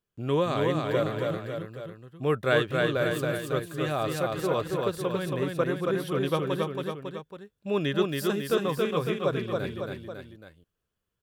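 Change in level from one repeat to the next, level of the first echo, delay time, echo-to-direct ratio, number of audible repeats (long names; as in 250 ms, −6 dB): −4.5 dB, −3.0 dB, 276 ms, −1.5 dB, 3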